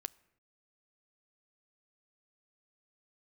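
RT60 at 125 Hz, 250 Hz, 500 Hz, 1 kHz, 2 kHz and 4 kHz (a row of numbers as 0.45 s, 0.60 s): 1.0 s, 0.90 s, 0.75 s, 0.75 s, 0.80 s, 0.60 s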